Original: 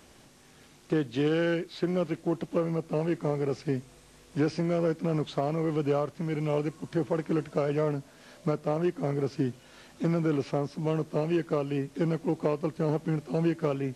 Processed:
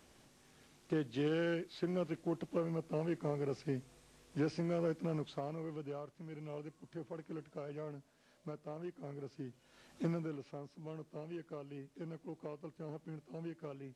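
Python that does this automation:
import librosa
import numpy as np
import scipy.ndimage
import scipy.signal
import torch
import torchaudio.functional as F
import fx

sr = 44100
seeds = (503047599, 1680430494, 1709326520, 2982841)

y = fx.gain(x, sr, db=fx.line((5.03, -8.5), (5.9, -17.5), (9.5, -17.5), (10.02, -7.0), (10.39, -18.5)))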